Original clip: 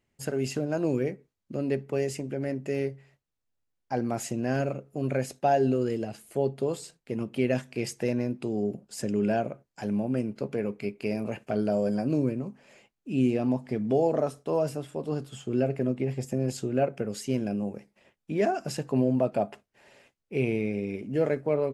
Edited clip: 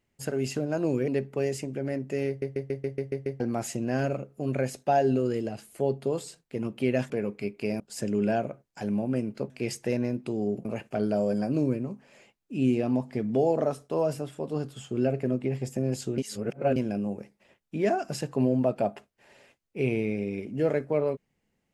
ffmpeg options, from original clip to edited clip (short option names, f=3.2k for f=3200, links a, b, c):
-filter_complex "[0:a]asplit=16[a][b][c][d][e][f][g][h][i][j][k][l][m][n][o][p];[a]atrim=end=1.082[q];[b]atrim=start=1.638:end=2.982[r];[c]atrim=start=2.838:end=2.982[s];[d]atrim=start=2.838:end=2.982[t];[e]atrim=start=2.838:end=2.982[u];[f]atrim=start=2.838:end=2.982[v];[g]atrim=start=2.838:end=2.982[w];[h]atrim=start=2.838:end=2.982[x];[i]atrim=start=2.838:end=2.982[y];[j]atrim=start=3.958:end=7.662[z];[k]atrim=start=10.508:end=11.212[aa];[l]atrim=start=8.808:end=10.512[ab];[m]atrim=start=7.658:end=8.812[ac];[n]atrim=start=11.208:end=16.742[ad];[o]atrim=start=16.738:end=17.322,asetpts=PTS-STARTPTS,areverse[ae];[p]atrim=start=17.318[af];[q][r]acrossfade=d=0.004:c1=hsin:c2=hsin[ag];[ag][s]acrossfade=d=0.004:c1=hsin:c2=hsin[ah];[ah][t]acrossfade=d=0.004:c1=hsin:c2=hsin[ai];[ai][u]acrossfade=d=0.004:c1=hsin:c2=hsin[aj];[aj][v]acrossfade=d=0.004:c1=hsin:c2=hsin[ak];[ak][w]acrossfade=d=0.004:c1=hsin:c2=hsin[al];[al][x]acrossfade=d=0.004:c1=hsin:c2=hsin[am];[am][y]acrossfade=d=0.004:c1=hsin:c2=hsin[an];[an][z]acrossfade=d=0.004:c1=hsin:c2=hsin[ao];[ao][aa]acrossfade=d=0.004:c1=hsin:c2=hsin[ap];[ap][ab]acrossfade=d=0.004:c1=hsin:c2=hsin[aq];[aq][ac]acrossfade=d=0.004:c1=hsin:c2=hsin[ar];[ar][ad]acrossfade=d=0.004:c1=hsin:c2=hsin[as];[as][ae]acrossfade=d=0.004:c1=hsin:c2=hsin[at];[at][af]acrossfade=d=0.004:c1=hsin:c2=hsin"